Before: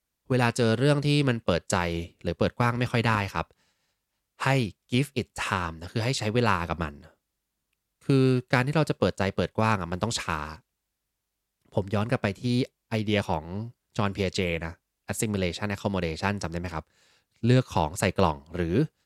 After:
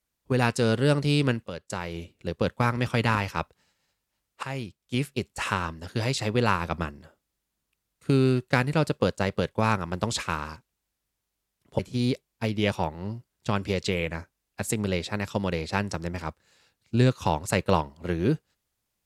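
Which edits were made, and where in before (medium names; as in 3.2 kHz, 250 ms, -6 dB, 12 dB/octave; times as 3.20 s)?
1.48–2.60 s: fade in, from -13 dB
4.43–5.26 s: fade in, from -13 dB
11.79–12.29 s: delete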